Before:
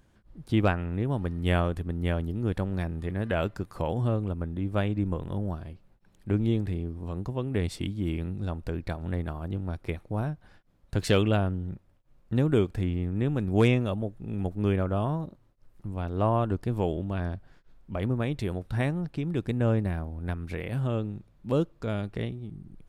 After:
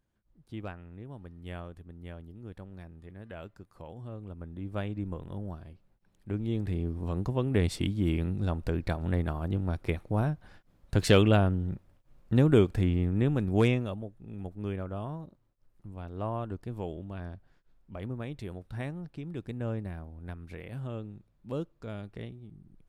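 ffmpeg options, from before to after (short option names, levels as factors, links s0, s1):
-af "volume=1.26,afade=t=in:st=4.07:d=0.66:silence=0.354813,afade=t=in:st=6.47:d=0.44:silence=0.354813,afade=t=out:st=13.06:d=1.01:silence=0.281838"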